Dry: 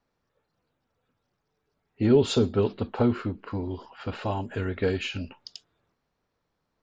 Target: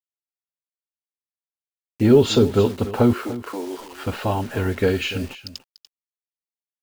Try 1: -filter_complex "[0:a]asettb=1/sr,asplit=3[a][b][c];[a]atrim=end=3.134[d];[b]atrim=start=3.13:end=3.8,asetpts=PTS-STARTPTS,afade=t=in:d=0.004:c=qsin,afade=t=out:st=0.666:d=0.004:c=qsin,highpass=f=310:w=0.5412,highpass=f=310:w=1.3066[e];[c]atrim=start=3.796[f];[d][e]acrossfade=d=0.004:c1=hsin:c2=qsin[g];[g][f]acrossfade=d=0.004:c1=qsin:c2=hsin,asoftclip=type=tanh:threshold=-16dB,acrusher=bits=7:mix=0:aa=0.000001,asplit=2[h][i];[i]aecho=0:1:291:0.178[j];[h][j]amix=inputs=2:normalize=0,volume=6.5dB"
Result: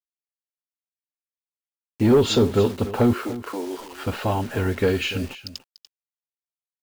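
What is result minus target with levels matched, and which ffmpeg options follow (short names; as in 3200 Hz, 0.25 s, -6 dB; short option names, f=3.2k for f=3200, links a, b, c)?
soft clip: distortion +17 dB
-filter_complex "[0:a]asettb=1/sr,asplit=3[a][b][c];[a]atrim=end=3.134[d];[b]atrim=start=3.13:end=3.8,asetpts=PTS-STARTPTS,afade=t=in:d=0.004:c=qsin,afade=t=out:st=0.666:d=0.004:c=qsin,highpass=f=310:w=0.5412,highpass=f=310:w=1.3066[e];[c]atrim=start=3.796[f];[d][e]acrossfade=d=0.004:c1=hsin:c2=qsin[g];[g][f]acrossfade=d=0.004:c1=qsin:c2=hsin,asoftclip=type=tanh:threshold=-5dB,acrusher=bits=7:mix=0:aa=0.000001,asplit=2[h][i];[i]aecho=0:1:291:0.178[j];[h][j]amix=inputs=2:normalize=0,volume=6.5dB"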